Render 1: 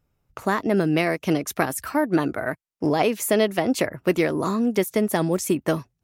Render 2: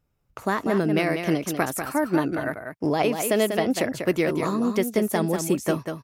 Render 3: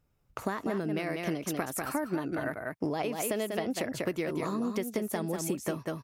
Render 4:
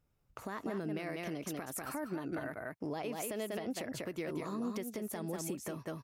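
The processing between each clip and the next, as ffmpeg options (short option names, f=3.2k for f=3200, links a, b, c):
-af "aecho=1:1:193:0.447,volume=-2dB"
-af "acompressor=threshold=-28dB:ratio=10"
-af "alimiter=level_in=0.5dB:limit=-24dB:level=0:latency=1:release=118,volume=-0.5dB,volume=-4dB"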